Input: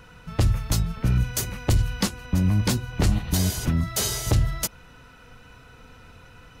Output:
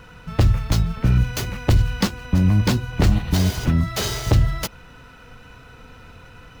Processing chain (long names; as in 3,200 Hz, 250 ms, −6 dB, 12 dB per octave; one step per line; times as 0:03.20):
running median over 5 samples
level +4.5 dB